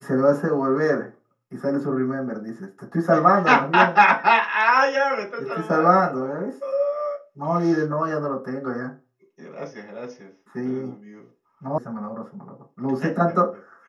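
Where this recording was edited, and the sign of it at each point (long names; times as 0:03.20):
0:11.78: cut off before it has died away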